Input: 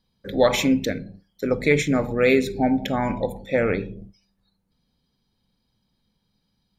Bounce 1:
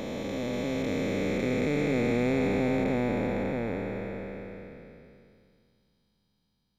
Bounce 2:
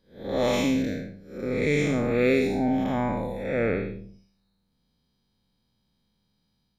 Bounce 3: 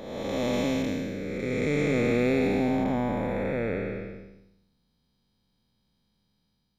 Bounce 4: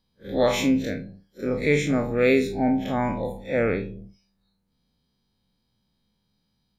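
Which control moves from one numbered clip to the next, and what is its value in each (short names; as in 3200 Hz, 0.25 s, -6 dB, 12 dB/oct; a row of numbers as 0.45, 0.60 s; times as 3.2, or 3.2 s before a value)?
time blur, width: 1630, 225, 597, 81 ms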